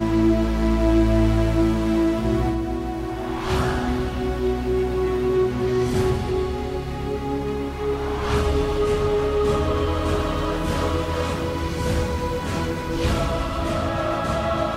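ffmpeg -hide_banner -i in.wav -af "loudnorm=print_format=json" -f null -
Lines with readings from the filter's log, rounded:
"input_i" : "-23.1",
"input_tp" : "-7.8",
"input_lra" : "2.5",
"input_thresh" : "-33.1",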